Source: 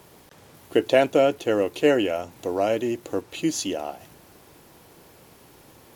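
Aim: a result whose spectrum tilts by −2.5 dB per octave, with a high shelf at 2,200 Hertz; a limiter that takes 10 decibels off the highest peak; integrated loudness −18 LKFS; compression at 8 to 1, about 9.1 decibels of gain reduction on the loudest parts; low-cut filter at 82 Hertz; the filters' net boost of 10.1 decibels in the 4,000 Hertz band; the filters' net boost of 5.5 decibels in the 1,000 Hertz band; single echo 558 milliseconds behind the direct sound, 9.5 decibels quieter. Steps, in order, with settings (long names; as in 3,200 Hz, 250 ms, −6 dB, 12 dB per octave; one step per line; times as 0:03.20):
high-pass filter 82 Hz
parametric band 1,000 Hz +7.5 dB
high-shelf EQ 2,200 Hz +8 dB
parametric band 4,000 Hz +6 dB
downward compressor 8 to 1, threshold −18 dBFS
brickwall limiter −15.5 dBFS
single-tap delay 558 ms −9.5 dB
level +9 dB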